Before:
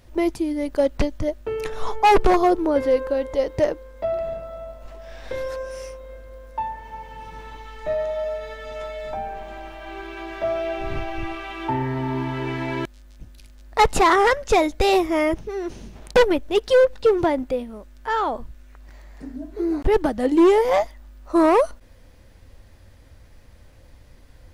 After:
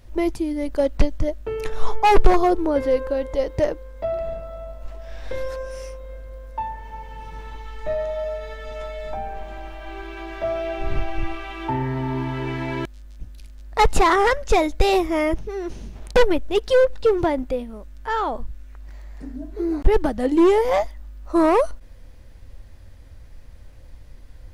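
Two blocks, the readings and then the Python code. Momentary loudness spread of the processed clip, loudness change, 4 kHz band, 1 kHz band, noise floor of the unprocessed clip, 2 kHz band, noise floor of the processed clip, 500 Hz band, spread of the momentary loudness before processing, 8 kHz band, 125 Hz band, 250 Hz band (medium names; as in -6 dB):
20 LU, -0.5 dB, -1.0 dB, -1.0 dB, -49 dBFS, -1.0 dB, -43 dBFS, -1.0 dB, 20 LU, -1.0 dB, +3.0 dB, -0.5 dB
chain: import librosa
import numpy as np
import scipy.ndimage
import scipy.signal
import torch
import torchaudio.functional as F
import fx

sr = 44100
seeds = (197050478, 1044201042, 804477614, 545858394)

y = fx.low_shelf(x, sr, hz=67.0, db=10.5)
y = y * librosa.db_to_amplitude(-1.0)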